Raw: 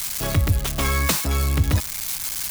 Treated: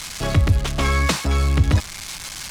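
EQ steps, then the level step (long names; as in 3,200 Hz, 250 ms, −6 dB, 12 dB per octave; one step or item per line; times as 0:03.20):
high-frequency loss of the air 69 metres
+3.0 dB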